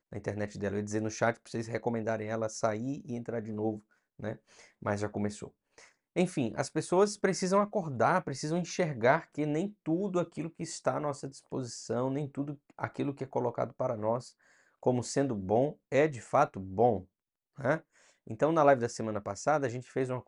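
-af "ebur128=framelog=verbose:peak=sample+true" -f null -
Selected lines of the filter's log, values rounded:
Integrated loudness:
  I:         -32.0 LUFS
  Threshold: -42.4 LUFS
Loudness range:
  LRA:         6.4 LU
  Threshold: -52.5 LUFS
  LRA low:   -36.2 LUFS
  LRA high:  -29.9 LUFS
Sample peak:
  Peak:      -11.0 dBFS
True peak:
  Peak:      -11.0 dBFS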